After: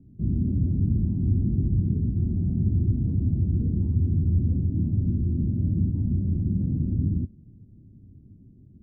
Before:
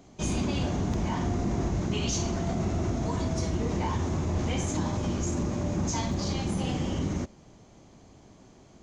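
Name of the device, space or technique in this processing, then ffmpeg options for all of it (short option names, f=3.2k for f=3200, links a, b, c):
the neighbour's flat through the wall: -af "lowpass=f=270:w=0.5412,lowpass=f=270:w=1.3066,equalizer=f=100:t=o:w=0.74:g=7.5,volume=3dB"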